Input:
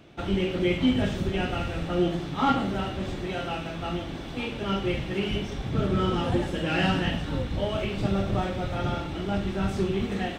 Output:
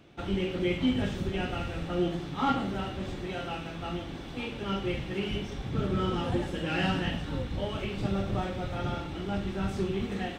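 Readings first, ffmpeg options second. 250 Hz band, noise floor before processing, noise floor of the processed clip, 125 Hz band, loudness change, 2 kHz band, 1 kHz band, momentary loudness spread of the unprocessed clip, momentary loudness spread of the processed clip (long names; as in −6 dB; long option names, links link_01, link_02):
−4.0 dB, −35 dBFS, −40 dBFS, −4.0 dB, −4.0 dB, −4.0 dB, −4.0 dB, 7 LU, 8 LU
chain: -af "bandreject=frequency=640:width=16,volume=-4dB"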